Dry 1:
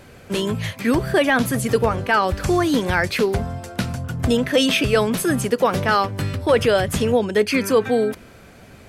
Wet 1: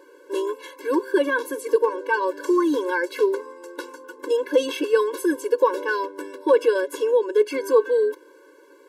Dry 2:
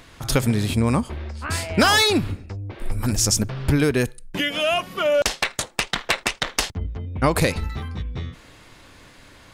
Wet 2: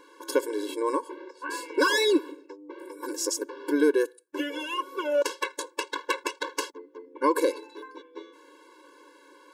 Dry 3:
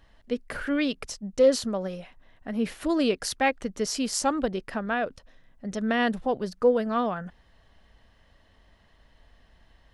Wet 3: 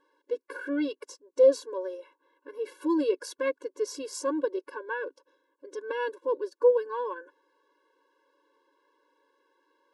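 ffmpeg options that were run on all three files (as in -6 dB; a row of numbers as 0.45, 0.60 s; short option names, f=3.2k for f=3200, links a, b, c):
-af "highshelf=f=1.6k:t=q:w=1.5:g=-6.5,afftfilt=real='re*eq(mod(floor(b*sr/1024/290),2),1)':imag='im*eq(mod(floor(b*sr/1024/290),2),1)':win_size=1024:overlap=0.75"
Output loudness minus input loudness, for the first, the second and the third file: -2.5, -6.0, -2.0 LU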